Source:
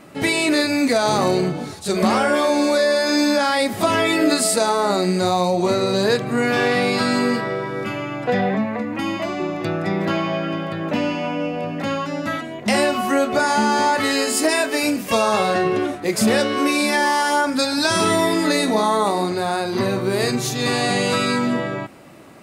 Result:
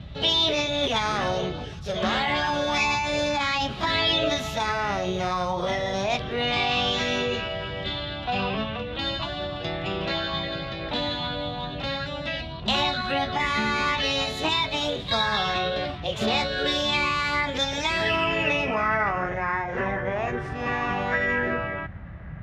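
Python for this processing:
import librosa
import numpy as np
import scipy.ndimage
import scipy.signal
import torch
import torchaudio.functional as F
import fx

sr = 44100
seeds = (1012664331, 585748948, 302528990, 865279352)

y = fx.formant_shift(x, sr, semitones=6)
y = fx.dmg_noise_band(y, sr, seeds[0], low_hz=40.0, high_hz=170.0, level_db=-30.0)
y = fx.filter_sweep_lowpass(y, sr, from_hz=3700.0, to_hz=1800.0, start_s=17.53, end_s=19.46, q=3.8)
y = y * librosa.db_to_amplitude(-8.5)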